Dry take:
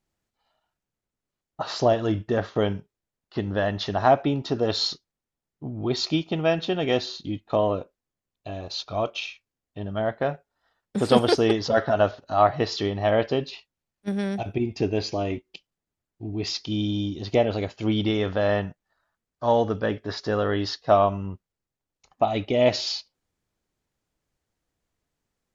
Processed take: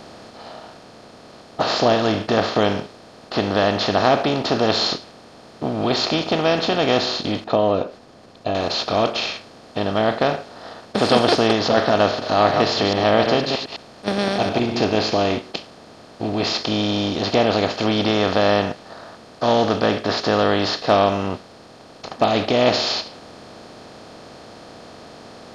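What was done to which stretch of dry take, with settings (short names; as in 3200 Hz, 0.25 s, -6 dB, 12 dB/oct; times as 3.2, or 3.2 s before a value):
7.44–8.55 spectral contrast raised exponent 1.5
12.1–14.96 reverse delay 0.104 s, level -9 dB
whole clip: per-bin compression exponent 0.4; dynamic EQ 3100 Hz, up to +4 dB, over -37 dBFS, Q 0.8; gain -2.5 dB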